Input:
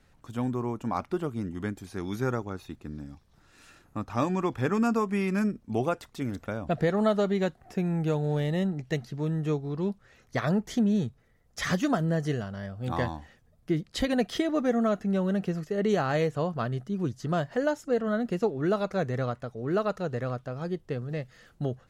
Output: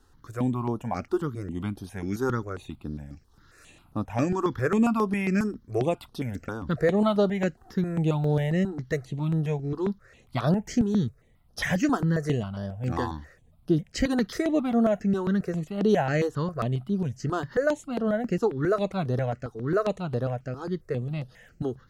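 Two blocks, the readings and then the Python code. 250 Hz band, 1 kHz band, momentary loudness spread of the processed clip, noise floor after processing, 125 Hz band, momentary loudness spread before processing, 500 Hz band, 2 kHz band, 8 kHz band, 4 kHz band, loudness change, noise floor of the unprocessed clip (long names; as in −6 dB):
+2.0 dB, +1.0 dB, 11 LU, −59 dBFS, +2.5 dB, 10 LU, +1.5 dB, +1.5 dB, +1.5 dB, −0.5 dB, +2.0 dB, −62 dBFS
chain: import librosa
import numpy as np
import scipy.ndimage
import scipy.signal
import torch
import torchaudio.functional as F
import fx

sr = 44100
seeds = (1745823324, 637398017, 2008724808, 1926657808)

y = fx.phaser_held(x, sr, hz=7.4, low_hz=600.0, high_hz=7300.0)
y = y * librosa.db_to_amplitude(4.5)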